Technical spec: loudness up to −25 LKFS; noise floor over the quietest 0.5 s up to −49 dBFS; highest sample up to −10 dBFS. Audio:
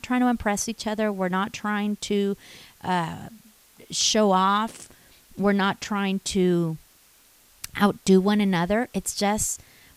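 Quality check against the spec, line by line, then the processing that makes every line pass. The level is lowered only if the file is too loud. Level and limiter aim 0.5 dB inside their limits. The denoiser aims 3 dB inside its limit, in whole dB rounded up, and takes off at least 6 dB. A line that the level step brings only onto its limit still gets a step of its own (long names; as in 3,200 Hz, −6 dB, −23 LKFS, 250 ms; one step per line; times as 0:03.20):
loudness −24.0 LKFS: out of spec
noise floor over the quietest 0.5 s −57 dBFS: in spec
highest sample −6.5 dBFS: out of spec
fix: level −1.5 dB
brickwall limiter −10.5 dBFS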